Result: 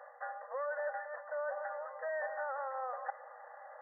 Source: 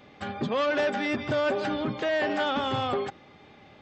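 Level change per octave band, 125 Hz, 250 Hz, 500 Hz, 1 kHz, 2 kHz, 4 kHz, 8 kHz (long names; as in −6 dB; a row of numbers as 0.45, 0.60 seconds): below −40 dB, below −40 dB, −11.5 dB, −9.0 dB, −11.0 dB, below −40 dB, can't be measured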